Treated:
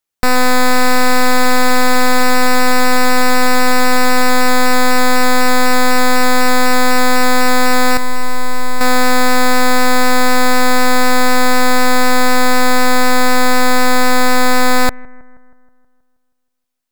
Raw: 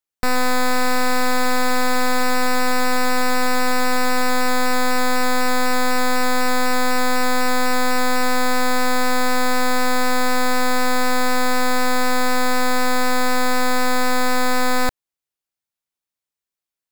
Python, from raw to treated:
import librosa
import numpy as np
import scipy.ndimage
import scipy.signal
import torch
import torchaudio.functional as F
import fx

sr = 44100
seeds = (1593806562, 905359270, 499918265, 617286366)

y = fx.comb_fb(x, sr, f0_hz=200.0, decay_s=0.36, harmonics='all', damping=0.0, mix_pct=70, at=(7.97, 8.81))
y = fx.echo_bbd(y, sr, ms=159, stages=2048, feedback_pct=58, wet_db=-22.5)
y = y * 10.0 ** (7.0 / 20.0)